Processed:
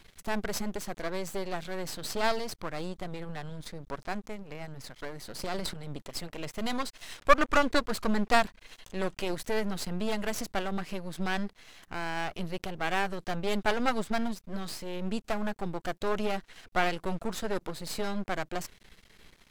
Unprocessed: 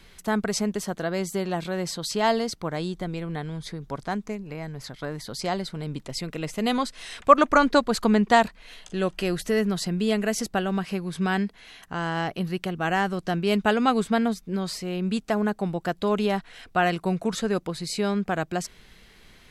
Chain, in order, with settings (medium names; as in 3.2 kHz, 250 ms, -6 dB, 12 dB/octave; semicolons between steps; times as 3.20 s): 5.43–5.87 s: transient shaper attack -9 dB, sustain +11 dB; half-wave rectifier; trim -1.5 dB